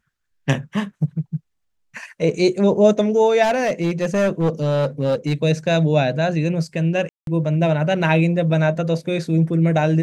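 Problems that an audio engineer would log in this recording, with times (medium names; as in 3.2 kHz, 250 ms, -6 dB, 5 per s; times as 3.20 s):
3.42–5.33 s: clipped -14 dBFS
7.09–7.27 s: dropout 182 ms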